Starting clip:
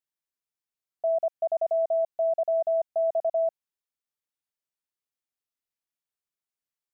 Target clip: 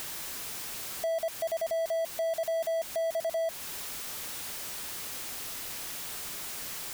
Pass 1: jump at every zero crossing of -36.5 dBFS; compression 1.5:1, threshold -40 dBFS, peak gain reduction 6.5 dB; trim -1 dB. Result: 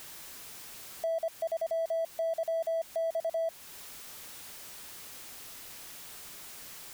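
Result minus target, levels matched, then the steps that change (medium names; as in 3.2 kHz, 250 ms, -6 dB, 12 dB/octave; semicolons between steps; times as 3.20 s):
jump at every zero crossing: distortion -9 dB
change: jump at every zero crossing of -26 dBFS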